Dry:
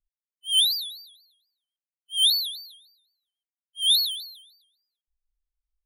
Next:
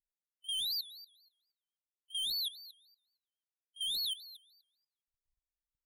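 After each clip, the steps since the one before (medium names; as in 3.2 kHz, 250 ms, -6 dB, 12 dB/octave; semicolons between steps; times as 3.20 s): Chebyshev shaper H 2 -14 dB, 4 -14 dB, 6 -23 dB, 7 -44 dB, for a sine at -12 dBFS; level held to a coarse grid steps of 16 dB; trim -3 dB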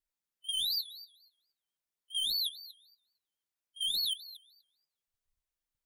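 flange 0.46 Hz, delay 2.8 ms, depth 8.8 ms, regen -49%; trim +7 dB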